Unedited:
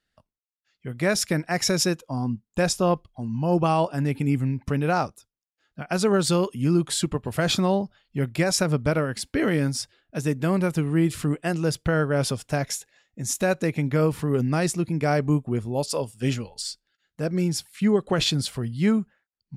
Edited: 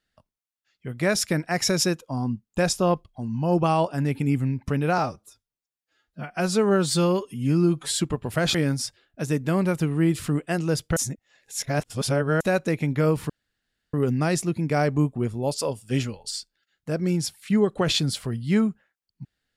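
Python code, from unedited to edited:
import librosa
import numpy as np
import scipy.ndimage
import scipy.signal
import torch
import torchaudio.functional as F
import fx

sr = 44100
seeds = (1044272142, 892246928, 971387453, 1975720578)

y = fx.edit(x, sr, fx.stretch_span(start_s=4.98, length_s=1.97, factor=1.5),
    fx.cut(start_s=7.56, length_s=1.94),
    fx.reverse_span(start_s=11.92, length_s=1.44),
    fx.insert_room_tone(at_s=14.25, length_s=0.64), tone=tone)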